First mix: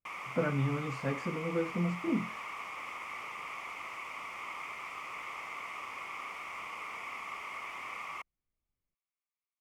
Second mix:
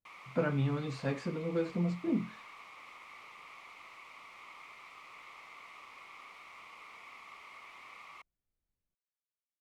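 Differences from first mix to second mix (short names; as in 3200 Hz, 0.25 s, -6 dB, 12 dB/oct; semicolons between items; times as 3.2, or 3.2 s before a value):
background -10.5 dB; master: add bell 4000 Hz +12 dB 0.38 oct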